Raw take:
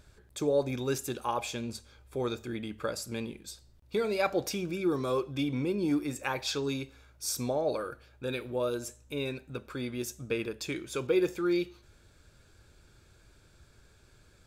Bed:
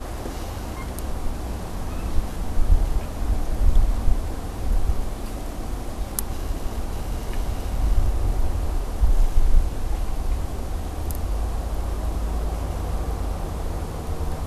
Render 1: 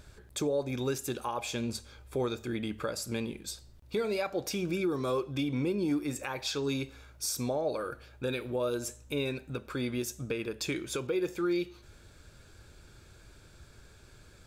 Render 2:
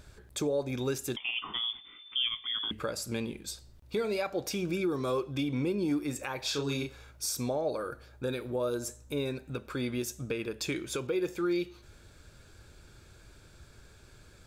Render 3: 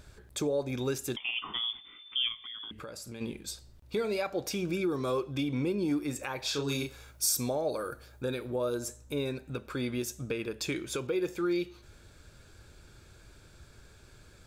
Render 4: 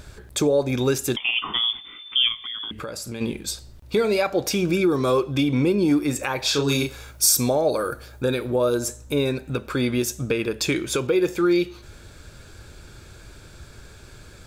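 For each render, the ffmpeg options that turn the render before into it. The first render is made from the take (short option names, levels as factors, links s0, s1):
-filter_complex "[0:a]asplit=2[s0][s1];[s1]acompressor=threshold=0.0141:ratio=6,volume=0.75[s2];[s0][s2]amix=inputs=2:normalize=0,alimiter=limit=0.0794:level=0:latency=1:release=350"
-filter_complex "[0:a]asettb=1/sr,asplit=3[s0][s1][s2];[s0]atrim=end=1.164[s3];[s1]atrim=start=1.16:end=2.71,asetpts=PTS-STARTPTS,afade=t=in:d=0.004:c=qsin,afade=t=out:st=1.546:d=0.004:c=qsin,lowpass=f=3100:t=q:w=0.5098,lowpass=f=3100:t=q:w=0.6013,lowpass=f=3100:t=q:w=0.9,lowpass=f=3100:t=q:w=2.563,afreqshift=-3600[s4];[s2]atrim=start=2.706[s5];[s3][s4]acrossfade=d=0.004:c1=hsin:c2=qsin[s6];[s6][s5]acrossfade=d=0.004:c1=qsin:c2=hsin,asettb=1/sr,asplit=3[s7][s8][s9];[s7]atrim=end=6.404[s10];[s8]atrim=start=6.4:end=7.11,asetpts=PTS-STARTPTS,afade=t=in:d=0.004:c=qsin,afade=t=out:st=0.706:d=0.004:c=qsin,asplit=2[s11][s12];[s12]adelay=35,volume=0.631[s13];[s11][s13]amix=inputs=2:normalize=0,atrim=end_sample=31311[s14];[s9]atrim=start=7.106[s15];[s10][s14]acrossfade=d=0.004:c1=hsin:c2=qsin[s16];[s16][s15]acrossfade=d=0.004:c1=qsin:c2=hsin,asettb=1/sr,asplit=3[s17][s18][s19];[s17]atrim=end=7.704[s20];[s18]atrim=start=7.7:end=9.46,asetpts=PTS-STARTPTS,afade=t=in:d=0.004:c=qsin,afade=t=out:st=1.756:d=0.004:c=qsin,equalizer=f=2700:w=1.9:g=-6.5[s21];[s19]atrim=start=9.456[s22];[s20][s21]acrossfade=d=0.004:c1=hsin:c2=qsin[s23];[s23][s22]acrossfade=d=0.004:c1=qsin:c2=hsin"
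-filter_complex "[0:a]asplit=3[s0][s1][s2];[s0]afade=t=out:st=2.31:d=0.02[s3];[s1]acompressor=threshold=0.00794:ratio=3:attack=3.2:release=140:knee=1:detection=peak,afade=t=in:st=2.31:d=0.02,afade=t=out:st=3.2:d=0.02[s4];[s2]afade=t=in:st=3.2:d=0.02[s5];[s3][s4][s5]amix=inputs=3:normalize=0,asettb=1/sr,asplit=3[s6][s7][s8];[s6]atrim=end=6.684[s9];[s7]atrim=start=6.68:end=8.23,asetpts=PTS-STARTPTS,afade=t=in:d=0.004:c=qsin,afade=t=out:st=1.546:d=0.004:c=qsin,highshelf=f=6800:g=10.5[s10];[s8]atrim=start=8.226[s11];[s9][s10]acrossfade=d=0.004:c1=hsin:c2=qsin[s12];[s12][s11]acrossfade=d=0.004:c1=qsin:c2=hsin"
-af "volume=3.35"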